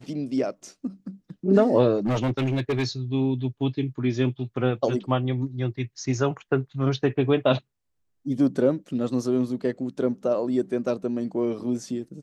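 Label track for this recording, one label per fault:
1.970000	2.870000	clipping −20 dBFS

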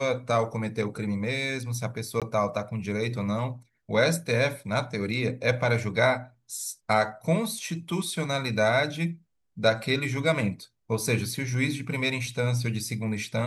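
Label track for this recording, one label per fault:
2.200000	2.220000	drop-out 17 ms

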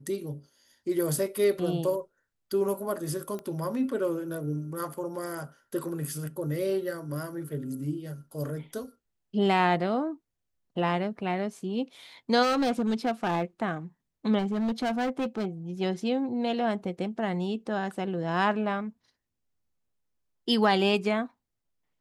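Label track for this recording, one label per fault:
3.390000	3.390000	click −25 dBFS
12.420000	13.430000	clipping −22 dBFS
14.380000	15.460000	clipping −25 dBFS

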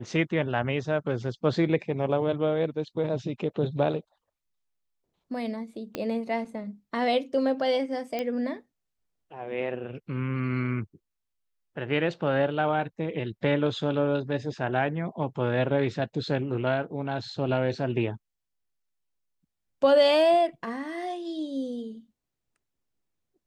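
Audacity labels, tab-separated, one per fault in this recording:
5.950000	5.950000	click −16 dBFS
8.190000	8.190000	click −17 dBFS

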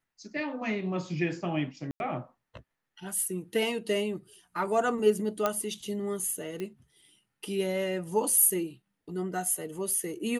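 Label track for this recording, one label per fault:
1.910000	2.000000	drop-out 91 ms
5.460000	5.460000	click −12 dBFS
6.600000	6.600000	click −23 dBFS

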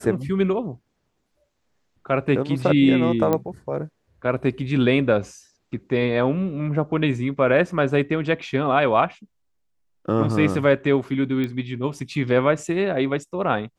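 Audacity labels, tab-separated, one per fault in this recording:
3.330000	3.330000	click −9 dBFS
11.440000	11.440000	click −16 dBFS

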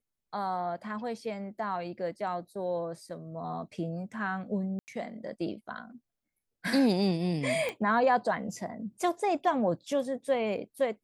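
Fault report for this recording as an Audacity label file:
4.790000	4.880000	drop-out 89 ms
7.690000	7.690000	click −20 dBFS

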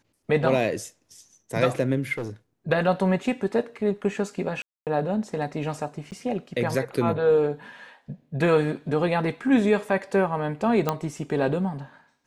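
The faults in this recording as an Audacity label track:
2.130000	2.300000	clipping −26.5 dBFS
4.620000	4.870000	drop-out 248 ms
6.110000	6.120000	drop-out 9 ms
10.890000	10.890000	click −9 dBFS

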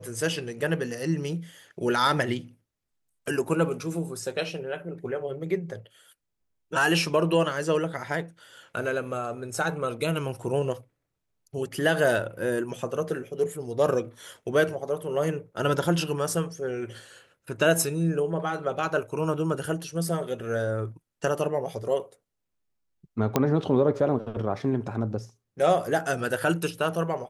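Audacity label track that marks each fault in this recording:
23.360000	23.360000	click −8 dBFS

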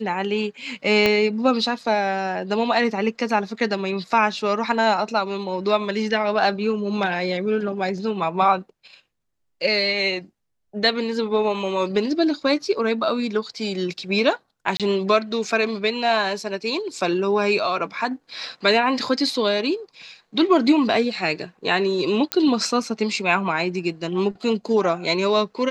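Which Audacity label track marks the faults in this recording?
1.060000	1.060000	click −5 dBFS
14.770000	14.800000	drop-out 27 ms
22.320000	22.320000	click −4 dBFS

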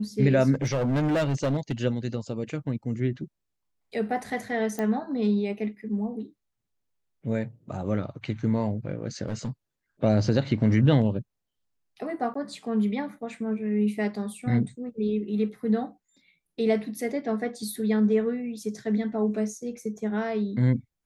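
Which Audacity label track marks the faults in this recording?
0.530000	1.720000	clipping −21.5 dBFS
4.790000	4.790000	click −17 dBFS
9.280000	9.500000	clipping −25.5 dBFS
12.340000	12.350000	drop-out

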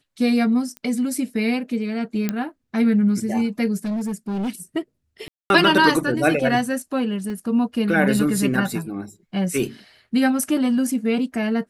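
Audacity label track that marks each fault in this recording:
0.770000	0.770000	click −19 dBFS
2.290000	2.290000	click −9 dBFS
3.850000	4.500000	clipping −22 dBFS
5.280000	5.500000	drop-out 221 ms
7.300000	7.300000	drop-out 2.1 ms

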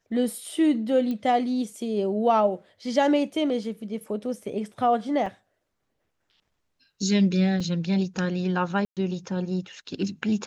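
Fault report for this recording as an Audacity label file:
1.110000	1.110000	click −20 dBFS
5.260000	5.260000	drop-out 3.4 ms
7.600000	7.600000	drop-out 3.8 ms
8.850000	8.970000	drop-out 117 ms

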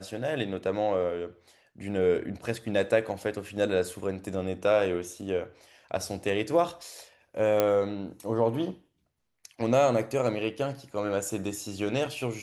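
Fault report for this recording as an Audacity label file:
7.600000	7.600000	click −10 dBFS

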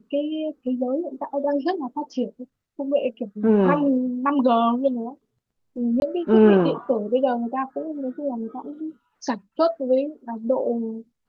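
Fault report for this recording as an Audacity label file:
6.000000	6.020000	drop-out 21 ms

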